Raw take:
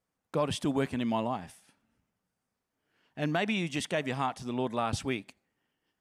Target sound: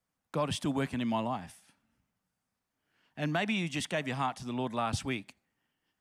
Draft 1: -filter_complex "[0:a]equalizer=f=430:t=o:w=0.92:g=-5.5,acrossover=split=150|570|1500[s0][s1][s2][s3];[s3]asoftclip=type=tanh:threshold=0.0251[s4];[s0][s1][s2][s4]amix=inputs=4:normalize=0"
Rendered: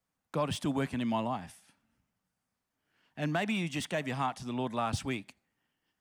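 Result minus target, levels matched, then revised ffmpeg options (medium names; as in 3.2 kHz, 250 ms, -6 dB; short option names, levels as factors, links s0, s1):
saturation: distortion +15 dB
-filter_complex "[0:a]equalizer=f=430:t=o:w=0.92:g=-5.5,acrossover=split=150|570|1500[s0][s1][s2][s3];[s3]asoftclip=type=tanh:threshold=0.0794[s4];[s0][s1][s2][s4]amix=inputs=4:normalize=0"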